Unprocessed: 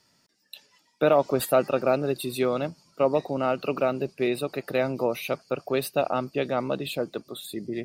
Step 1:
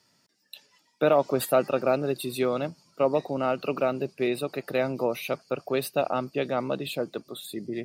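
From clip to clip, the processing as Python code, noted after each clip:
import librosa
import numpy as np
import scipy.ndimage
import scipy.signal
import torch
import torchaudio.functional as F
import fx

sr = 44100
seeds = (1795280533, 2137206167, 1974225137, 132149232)

y = scipy.signal.sosfilt(scipy.signal.butter(2, 78.0, 'highpass', fs=sr, output='sos'), x)
y = F.gain(torch.from_numpy(y), -1.0).numpy()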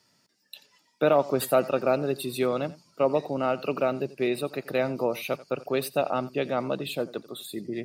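y = x + 10.0 ** (-19.0 / 20.0) * np.pad(x, (int(87 * sr / 1000.0), 0))[:len(x)]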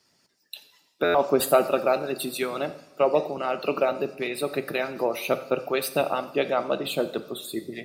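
y = fx.hpss(x, sr, part='harmonic', gain_db=-16)
y = fx.rev_double_slope(y, sr, seeds[0], early_s=0.71, late_s=2.2, knee_db=-18, drr_db=9.0)
y = fx.buffer_glitch(y, sr, at_s=(1.04,), block=512, repeats=8)
y = F.gain(torch.from_numpy(y), 5.0).numpy()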